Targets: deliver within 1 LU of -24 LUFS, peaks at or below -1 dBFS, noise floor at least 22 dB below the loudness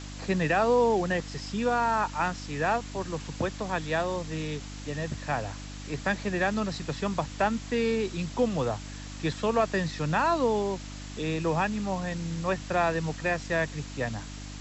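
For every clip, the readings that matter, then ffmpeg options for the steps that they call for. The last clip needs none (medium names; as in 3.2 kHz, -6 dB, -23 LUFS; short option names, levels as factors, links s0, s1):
hum 50 Hz; highest harmonic 300 Hz; hum level -38 dBFS; noise floor -40 dBFS; noise floor target -51 dBFS; loudness -29.0 LUFS; peak level -14.0 dBFS; loudness target -24.0 LUFS
-> -af "bandreject=f=50:t=h:w=4,bandreject=f=100:t=h:w=4,bandreject=f=150:t=h:w=4,bandreject=f=200:t=h:w=4,bandreject=f=250:t=h:w=4,bandreject=f=300:t=h:w=4"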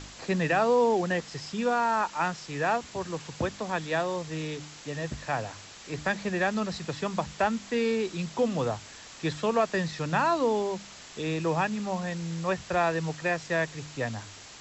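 hum not found; noise floor -47 dBFS; noise floor target -51 dBFS
-> -af "afftdn=nr=6:nf=-47"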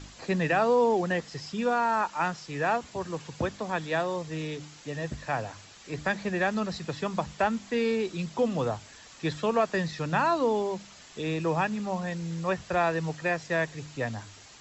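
noise floor -51 dBFS; noise floor target -52 dBFS
-> -af "afftdn=nr=6:nf=-51"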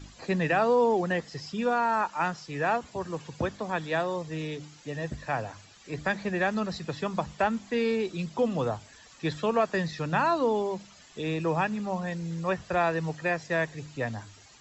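noise floor -54 dBFS; loudness -29.5 LUFS; peak level -14.0 dBFS; loudness target -24.0 LUFS
-> -af "volume=1.88"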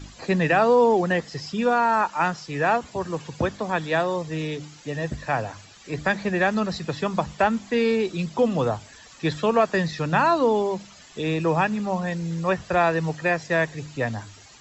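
loudness -24.0 LUFS; peak level -8.5 dBFS; noise floor -48 dBFS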